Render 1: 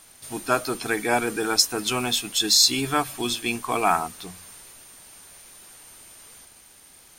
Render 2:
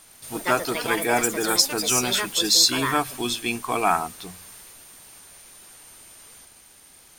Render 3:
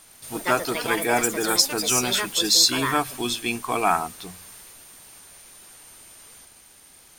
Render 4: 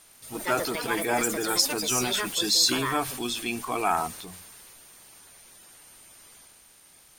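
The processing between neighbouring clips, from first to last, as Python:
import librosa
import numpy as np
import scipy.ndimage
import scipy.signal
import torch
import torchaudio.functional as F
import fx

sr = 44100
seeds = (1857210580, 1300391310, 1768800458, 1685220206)

y1 = fx.echo_pitch(x, sr, ms=114, semitones=6, count=2, db_per_echo=-6.0)
y2 = y1
y3 = fx.spec_quant(y2, sr, step_db=15)
y3 = fx.transient(y3, sr, attack_db=0, sustain_db=6)
y3 = F.gain(torch.from_numpy(y3), -4.0).numpy()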